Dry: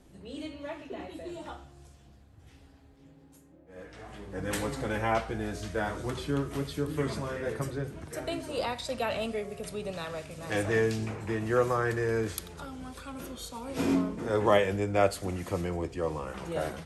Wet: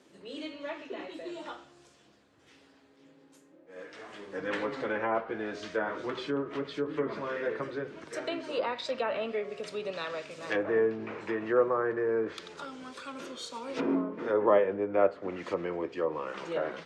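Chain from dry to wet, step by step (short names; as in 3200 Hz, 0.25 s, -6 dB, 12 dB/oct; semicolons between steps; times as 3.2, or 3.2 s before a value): LPF 6700 Hz 12 dB/oct; treble ducked by the level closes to 1100 Hz, closed at -25.5 dBFS; HPF 350 Hz 12 dB/oct; bell 750 Hz -7.5 dB 0.38 oct; gain +3.5 dB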